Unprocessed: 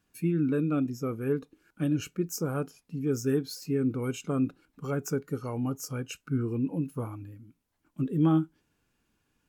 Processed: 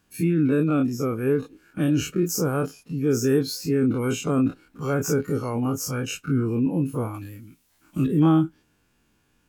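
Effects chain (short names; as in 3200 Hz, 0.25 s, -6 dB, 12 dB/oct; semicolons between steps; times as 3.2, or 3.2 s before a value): spectral dilation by 60 ms; 7.14–8.07 high shelf 2000 Hz +12 dB; gain +4 dB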